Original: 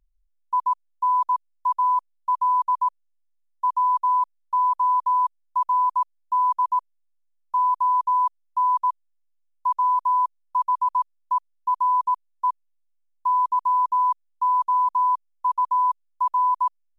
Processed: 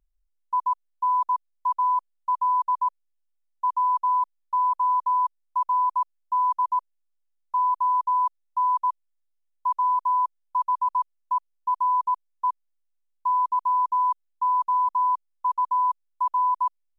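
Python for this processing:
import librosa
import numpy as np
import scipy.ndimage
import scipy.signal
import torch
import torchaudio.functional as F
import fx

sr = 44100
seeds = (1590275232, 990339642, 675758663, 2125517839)

y = fx.peak_eq(x, sr, hz=420.0, db=5.0, octaves=2.6)
y = y * librosa.db_to_amplitude(-4.5)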